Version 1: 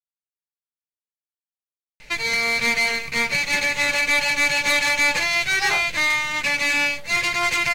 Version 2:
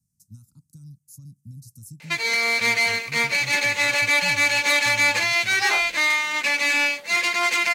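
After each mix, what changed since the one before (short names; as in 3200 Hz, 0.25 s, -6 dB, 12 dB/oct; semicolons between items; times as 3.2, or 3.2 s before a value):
speech: unmuted; first sound: add HPF 170 Hz 24 dB/oct; master: add bell 140 Hz -13 dB 0.75 oct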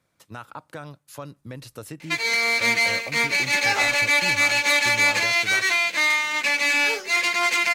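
speech: remove inverse Chebyshev band-stop 380–3300 Hz, stop band 40 dB; second sound: entry -1.95 s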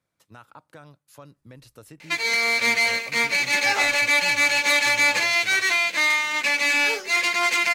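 speech -8.5 dB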